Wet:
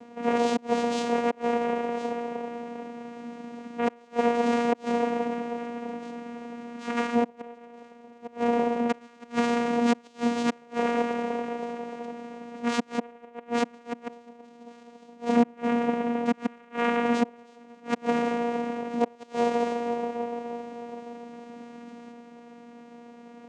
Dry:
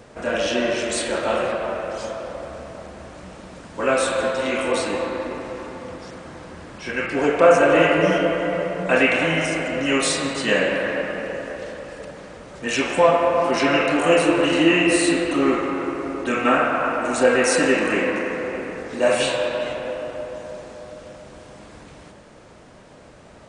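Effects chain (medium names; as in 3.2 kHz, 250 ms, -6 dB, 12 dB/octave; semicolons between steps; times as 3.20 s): inverted gate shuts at -10 dBFS, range -31 dB; vocoder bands 4, saw 237 Hz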